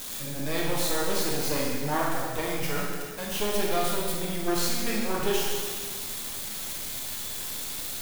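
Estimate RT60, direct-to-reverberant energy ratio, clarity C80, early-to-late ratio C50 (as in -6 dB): 1.9 s, -4.0 dB, 1.5 dB, 0.0 dB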